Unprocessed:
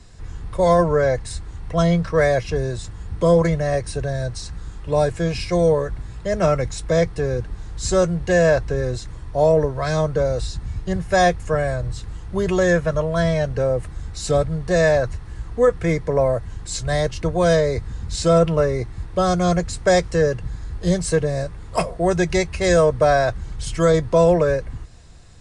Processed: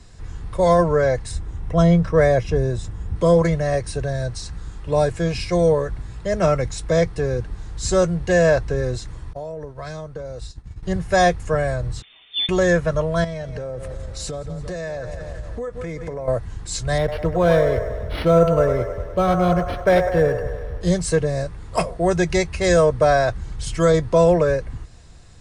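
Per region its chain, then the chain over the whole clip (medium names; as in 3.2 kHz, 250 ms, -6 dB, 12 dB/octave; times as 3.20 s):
1.31–3.16 s: tilt shelf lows +3.5 dB, about 890 Hz + band-stop 4.4 kHz, Q 11
9.33–10.83 s: expander -20 dBFS + compression 16:1, threshold -27 dBFS
12.02–12.49 s: brick-wall FIR high-pass 240 Hz + treble shelf 2.6 kHz -6 dB + frequency inversion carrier 3.9 kHz
13.24–16.28 s: feedback delay 168 ms, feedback 52%, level -15 dB + compression 12:1, threshold -25 dBFS
16.98–20.81 s: feedback echo behind a band-pass 100 ms, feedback 64%, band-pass 930 Hz, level -5.5 dB + decimation joined by straight lines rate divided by 6×
whole clip: none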